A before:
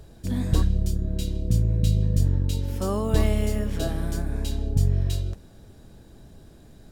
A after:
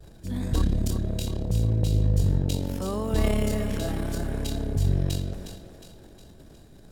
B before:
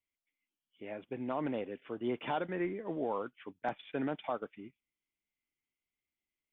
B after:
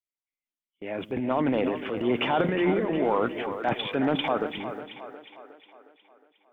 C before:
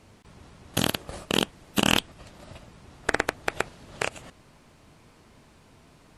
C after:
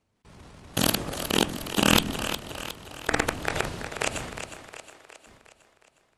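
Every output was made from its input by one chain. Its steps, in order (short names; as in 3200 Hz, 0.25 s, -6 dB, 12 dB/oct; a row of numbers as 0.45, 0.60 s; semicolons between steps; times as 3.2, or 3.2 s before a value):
transient shaper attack -2 dB, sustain +11 dB; gate with hold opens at -43 dBFS; split-band echo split 330 Hz, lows 0.135 s, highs 0.361 s, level -9.5 dB; match loudness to -27 LUFS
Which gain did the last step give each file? -3.5, +9.5, +0.5 dB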